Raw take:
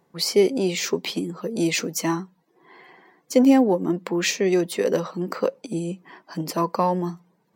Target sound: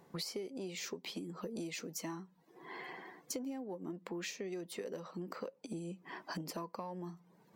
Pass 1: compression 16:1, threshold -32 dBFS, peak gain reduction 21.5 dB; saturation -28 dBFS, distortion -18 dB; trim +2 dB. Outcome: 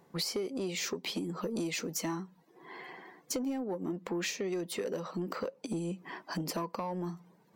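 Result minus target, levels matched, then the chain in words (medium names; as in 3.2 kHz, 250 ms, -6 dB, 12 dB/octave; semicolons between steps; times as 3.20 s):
compression: peak gain reduction -8.5 dB
compression 16:1, threshold -41 dBFS, peak gain reduction 30 dB; saturation -28 dBFS, distortion -31 dB; trim +2 dB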